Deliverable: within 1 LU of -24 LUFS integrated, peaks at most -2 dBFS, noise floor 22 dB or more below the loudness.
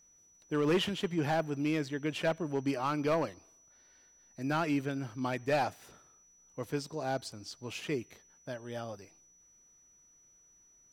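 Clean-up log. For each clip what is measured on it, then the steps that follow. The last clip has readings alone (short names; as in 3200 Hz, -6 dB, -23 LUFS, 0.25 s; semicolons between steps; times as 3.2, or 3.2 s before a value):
clipped 0.6%; flat tops at -23.0 dBFS; steady tone 5900 Hz; tone level -61 dBFS; loudness -34.0 LUFS; peak -23.0 dBFS; loudness target -24.0 LUFS
-> clip repair -23 dBFS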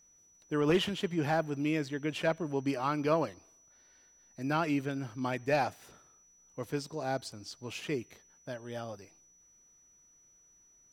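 clipped 0.0%; steady tone 5900 Hz; tone level -61 dBFS
-> notch 5900 Hz, Q 30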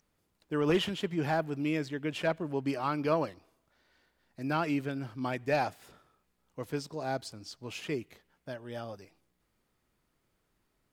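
steady tone none; loudness -33.0 LUFS; peak -14.5 dBFS; loudness target -24.0 LUFS
-> gain +9 dB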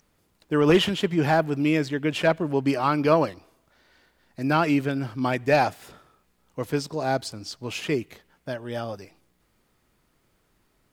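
loudness -24.5 LUFS; peak -5.5 dBFS; noise floor -68 dBFS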